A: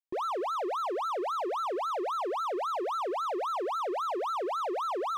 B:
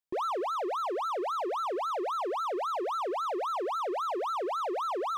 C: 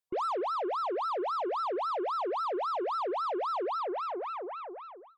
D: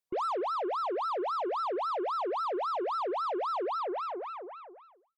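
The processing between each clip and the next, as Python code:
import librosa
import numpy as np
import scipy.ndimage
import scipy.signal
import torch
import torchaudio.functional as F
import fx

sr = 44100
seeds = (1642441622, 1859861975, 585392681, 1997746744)

y1 = fx.rider(x, sr, range_db=10, speed_s=0.5)
y2 = fx.fade_out_tail(y1, sr, length_s=1.53)
y2 = fx.spec_gate(y2, sr, threshold_db=-25, keep='strong')
y2 = fx.cheby_harmonics(y2, sr, harmonics=(6,), levels_db=(-26,), full_scale_db=-27.0)
y3 = fx.fade_out_tail(y2, sr, length_s=1.21)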